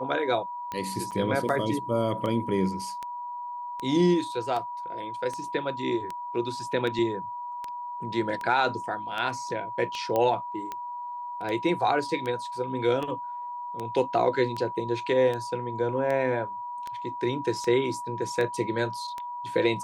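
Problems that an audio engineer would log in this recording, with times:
scratch tick 78 rpm −20 dBFS
whistle 970 Hz −33 dBFS
0:01.11–0:01.12: drop-out 7.3 ms
0:10.16: click −14 dBFS

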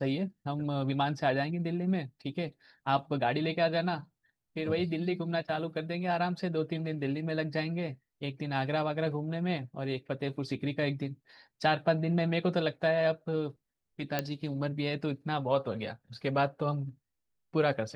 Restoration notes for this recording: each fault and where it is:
0:14.19: click −14 dBFS

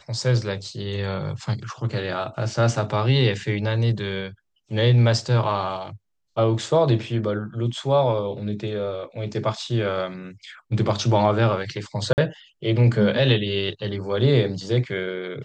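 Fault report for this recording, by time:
0:12.13–0:12.18: drop-out 49 ms

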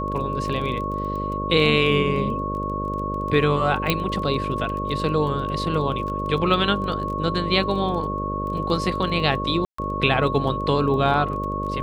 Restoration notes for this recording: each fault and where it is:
mains buzz 50 Hz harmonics 12 −29 dBFS
surface crackle 17 per second −30 dBFS
whistle 1,100 Hz −27 dBFS
0:03.90: click −5 dBFS
0:09.65–0:09.78: drop-out 134 ms

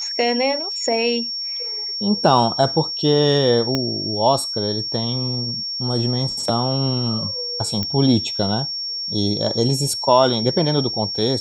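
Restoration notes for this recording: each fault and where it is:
whistle 5,500 Hz −24 dBFS
0:03.75: click −7 dBFS
0:07.83: click −10 dBFS

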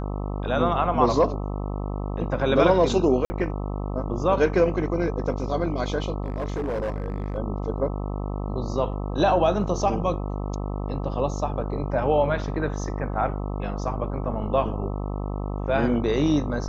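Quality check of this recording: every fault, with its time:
mains buzz 50 Hz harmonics 26 −29 dBFS
0:03.25–0:03.30: drop-out 50 ms
0:06.24–0:07.38: clipping −23.5 dBFS

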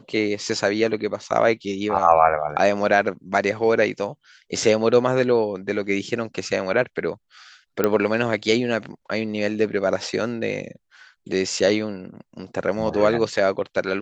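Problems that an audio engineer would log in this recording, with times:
0:07.84: click −6 dBFS

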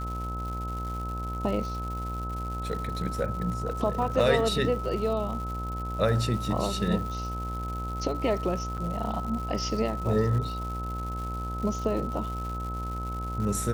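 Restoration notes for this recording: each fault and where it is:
mains buzz 60 Hz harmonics 18 −34 dBFS
surface crackle 250 per second −36 dBFS
whistle 1,300 Hz −35 dBFS
0:08.77–0:08.78: drop-out 7.5 ms

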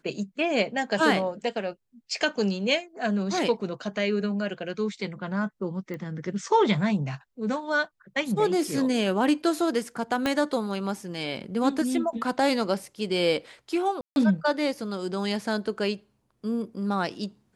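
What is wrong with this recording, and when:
0:05.94: click −24 dBFS
0:10.26: click −12 dBFS
0:14.01–0:14.16: drop-out 151 ms

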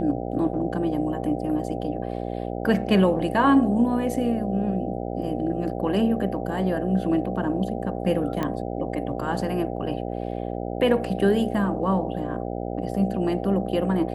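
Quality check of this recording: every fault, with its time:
mains buzz 60 Hz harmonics 13 −30 dBFS
0:08.43: click −14 dBFS

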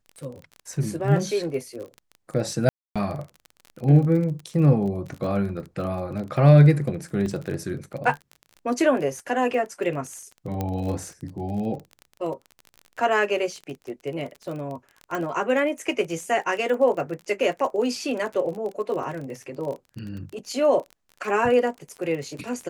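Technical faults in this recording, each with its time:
surface crackle 32 per second −31 dBFS
0:02.69–0:02.96: drop-out 266 ms
0:07.26: drop-out 2.5 ms
0:10.61: click −14 dBFS
0:15.15: click

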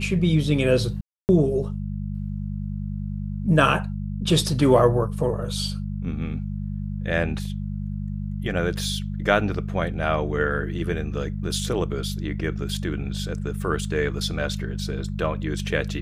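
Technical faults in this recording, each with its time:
mains hum 50 Hz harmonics 4 −29 dBFS
0:01.01–0:01.29: drop-out 279 ms

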